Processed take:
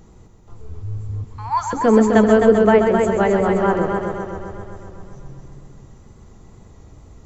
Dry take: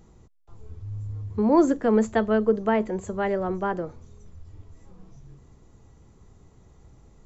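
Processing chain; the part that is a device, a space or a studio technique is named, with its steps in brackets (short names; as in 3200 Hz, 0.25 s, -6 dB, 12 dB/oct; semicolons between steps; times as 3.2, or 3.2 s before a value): 1.24–1.73 steep high-pass 780 Hz 96 dB/oct; multi-head tape echo (multi-head echo 0.13 s, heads first and second, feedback 61%, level -7.5 dB; wow and flutter 23 cents); gain +7 dB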